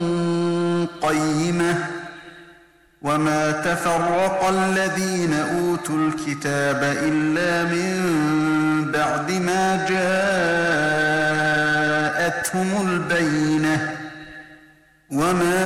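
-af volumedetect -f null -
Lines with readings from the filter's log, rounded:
mean_volume: -21.0 dB
max_volume: -15.2 dB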